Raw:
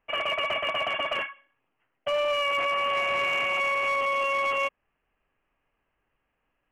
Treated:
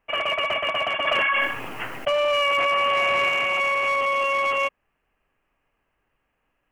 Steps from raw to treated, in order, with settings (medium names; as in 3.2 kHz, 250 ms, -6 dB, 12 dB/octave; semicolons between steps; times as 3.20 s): 1.07–3.29 s: level flattener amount 100%; trim +3.5 dB